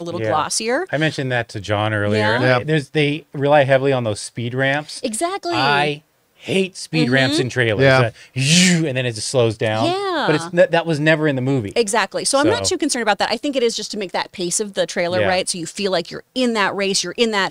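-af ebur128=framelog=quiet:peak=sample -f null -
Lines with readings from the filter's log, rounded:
Integrated loudness:
  I:         -18.1 LUFS
  Threshold: -28.2 LUFS
Loudness range:
  LRA:         3.5 LU
  Threshold: -38.0 LUFS
  LRA low:   -19.9 LUFS
  LRA high:  -16.4 LUFS
Sample peak:
  Peak:       -2.0 dBFS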